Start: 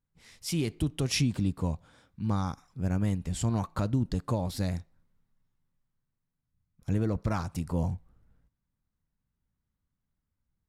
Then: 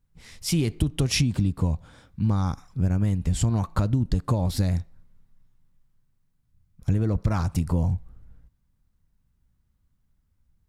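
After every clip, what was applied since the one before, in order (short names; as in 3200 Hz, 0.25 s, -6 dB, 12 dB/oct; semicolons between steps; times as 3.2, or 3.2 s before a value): low shelf 110 Hz +10.5 dB; compressor, threshold -25 dBFS, peak gain reduction 7 dB; gain +6.5 dB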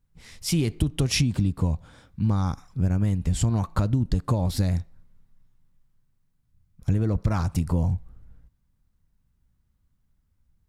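nothing audible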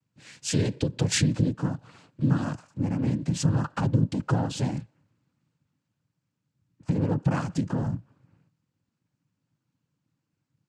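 noise vocoder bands 8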